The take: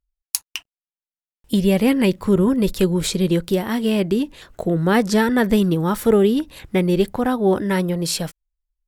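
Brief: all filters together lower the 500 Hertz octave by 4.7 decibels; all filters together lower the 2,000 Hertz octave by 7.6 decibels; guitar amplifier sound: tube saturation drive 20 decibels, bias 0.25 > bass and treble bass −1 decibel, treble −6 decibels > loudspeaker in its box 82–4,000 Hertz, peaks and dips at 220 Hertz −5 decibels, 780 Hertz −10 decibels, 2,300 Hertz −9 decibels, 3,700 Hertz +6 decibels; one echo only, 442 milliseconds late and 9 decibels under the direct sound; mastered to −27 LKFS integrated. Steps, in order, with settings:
parametric band 500 Hz −5 dB
parametric band 2,000 Hz −6 dB
single-tap delay 442 ms −9 dB
tube saturation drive 20 dB, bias 0.25
bass and treble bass −1 dB, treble −6 dB
loudspeaker in its box 82–4,000 Hz, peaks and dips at 220 Hz −5 dB, 780 Hz −10 dB, 2,300 Hz −9 dB, 3,700 Hz +6 dB
level +1 dB

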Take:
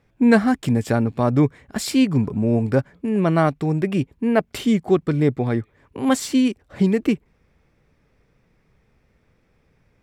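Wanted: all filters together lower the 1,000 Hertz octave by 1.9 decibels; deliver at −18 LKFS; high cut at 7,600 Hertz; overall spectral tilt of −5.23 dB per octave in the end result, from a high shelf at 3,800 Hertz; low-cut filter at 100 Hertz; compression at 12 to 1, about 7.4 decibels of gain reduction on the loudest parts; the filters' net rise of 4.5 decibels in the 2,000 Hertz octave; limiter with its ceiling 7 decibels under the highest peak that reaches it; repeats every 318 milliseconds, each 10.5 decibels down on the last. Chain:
high-pass filter 100 Hz
low-pass filter 7,600 Hz
parametric band 1,000 Hz −5 dB
parametric band 2,000 Hz +6 dB
high-shelf EQ 3,800 Hz +8 dB
downward compressor 12 to 1, threshold −18 dBFS
brickwall limiter −14.5 dBFS
repeating echo 318 ms, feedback 30%, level −10.5 dB
level +7.5 dB

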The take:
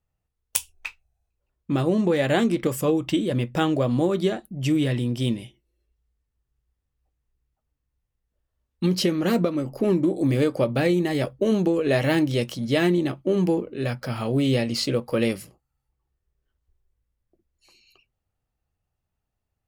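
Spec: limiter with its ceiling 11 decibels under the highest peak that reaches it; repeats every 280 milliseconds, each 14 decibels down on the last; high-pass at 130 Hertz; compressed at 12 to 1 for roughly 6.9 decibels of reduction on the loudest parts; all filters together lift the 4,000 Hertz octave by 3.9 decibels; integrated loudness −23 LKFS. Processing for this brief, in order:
high-pass filter 130 Hz
parametric band 4,000 Hz +5 dB
downward compressor 12 to 1, threshold −24 dBFS
brickwall limiter −19.5 dBFS
repeating echo 280 ms, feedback 20%, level −14 dB
level +7.5 dB

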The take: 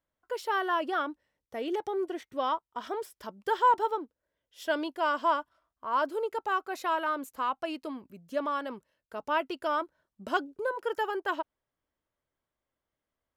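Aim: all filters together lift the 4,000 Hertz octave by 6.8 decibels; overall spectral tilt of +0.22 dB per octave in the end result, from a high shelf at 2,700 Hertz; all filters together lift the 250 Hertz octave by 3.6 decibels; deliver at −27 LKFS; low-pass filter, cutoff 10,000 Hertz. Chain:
low-pass filter 10,000 Hz
parametric band 250 Hz +5 dB
high-shelf EQ 2,700 Hz +4.5 dB
parametric band 4,000 Hz +6 dB
level +3 dB

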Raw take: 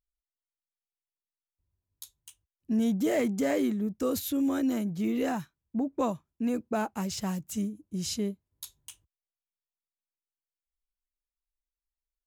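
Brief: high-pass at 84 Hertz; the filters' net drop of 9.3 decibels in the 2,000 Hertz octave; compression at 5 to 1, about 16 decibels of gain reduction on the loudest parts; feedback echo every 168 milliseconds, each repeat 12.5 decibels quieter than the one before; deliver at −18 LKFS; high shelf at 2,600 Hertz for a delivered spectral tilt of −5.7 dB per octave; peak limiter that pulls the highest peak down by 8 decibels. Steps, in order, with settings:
high-pass filter 84 Hz
parametric band 2,000 Hz −8.5 dB
high-shelf EQ 2,600 Hz −8 dB
downward compressor 5 to 1, threshold −43 dBFS
brickwall limiter −40 dBFS
repeating echo 168 ms, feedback 24%, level −12.5 dB
level +30 dB

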